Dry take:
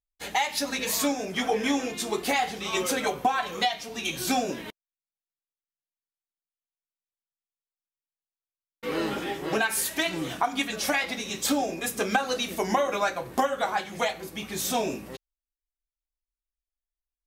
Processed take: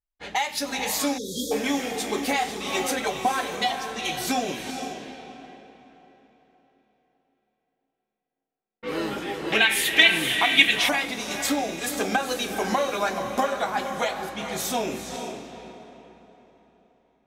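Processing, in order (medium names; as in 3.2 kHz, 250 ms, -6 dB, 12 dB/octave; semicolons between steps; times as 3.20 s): on a send: echo that smears into a reverb 461 ms, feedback 41%, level -6.5 dB; 1.18–1.52 s: on the sum: spectral selection erased 580–3200 Hz; level-controlled noise filter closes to 2 kHz, open at -26 dBFS; 9.52–10.89 s: high-order bell 2.6 kHz +14 dB 1.3 oct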